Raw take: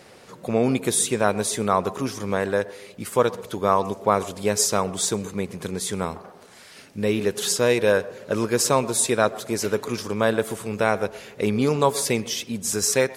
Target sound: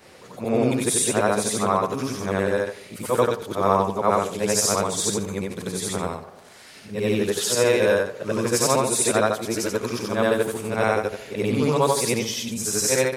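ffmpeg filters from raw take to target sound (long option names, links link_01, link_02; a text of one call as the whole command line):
ffmpeg -i in.wav -af "afftfilt=real='re':imag='-im':win_size=8192:overlap=0.75,volume=5dB" out.wav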